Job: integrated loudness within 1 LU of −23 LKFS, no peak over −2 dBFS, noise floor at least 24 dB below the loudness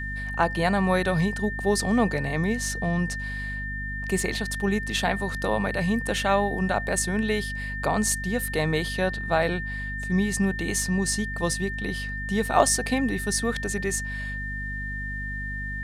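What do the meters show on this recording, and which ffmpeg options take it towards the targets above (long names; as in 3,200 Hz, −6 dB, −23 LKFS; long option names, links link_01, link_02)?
mains hum 50 Hz; hum harmonics up to 250 Hz; level of the hum −32 dBFS; interfering tone 1,800 Hz; level of the tone −32 dBFS; integrated loudness −26.0 LKFS; sample peak −3.5 dBFS; target loudness −23.0 LKFS
→ -af "bandreject=frequency=50:width_type=h:width=4,bandreject=frequency=100:width_type=h:width=4,bandreject=frequency=150:width_type=h:width=4,bandreject=frequency=200:width_type=h:width=4,bandreject=frequency=250:width_type=h:width=4"
-af "bandreject=frequency=1800:width=30"
-af "volume=3dB,alimiter=limit=-2dB:level=0:latency=1"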